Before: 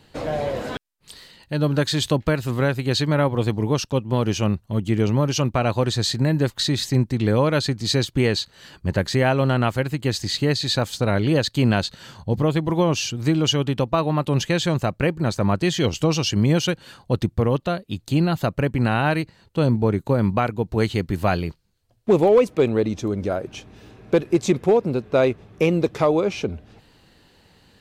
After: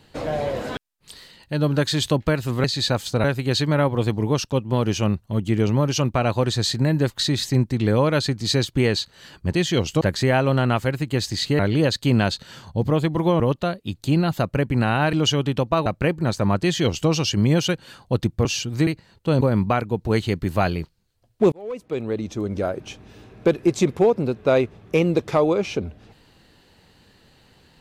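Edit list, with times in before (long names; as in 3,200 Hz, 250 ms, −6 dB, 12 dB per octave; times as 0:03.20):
0:10.51–0:11.11: move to 0:02.64
0:12.92–0:13.34: swap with 0:17.44–0:19.17
0:14.07–0:14.85: remove
0:15.60–0:16.08: duplicate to 0:08.93
0:19.71–0:20.08: remove
0:22.19–0:23.31: fade in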